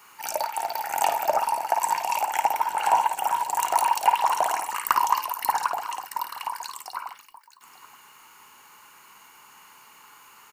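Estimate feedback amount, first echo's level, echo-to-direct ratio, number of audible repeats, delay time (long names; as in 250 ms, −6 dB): repeats not evenly spaced, −7.0 dB, −6.5 dB, 2, 54 ms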